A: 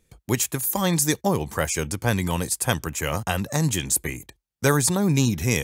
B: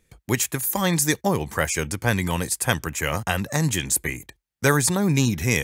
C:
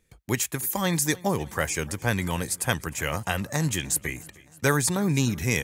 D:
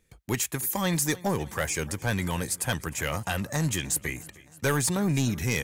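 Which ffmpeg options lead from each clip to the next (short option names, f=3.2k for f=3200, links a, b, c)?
-af "equalizer=f=1.9k:t=o:w=0.83:g=5"
-af "aecho=1:1:307|614|921|1228:0.075|0.0427|0.0244|0.0139,volume=-3.5dB"
-af "asoftclip=type=tanh:threshold=-17.5dB"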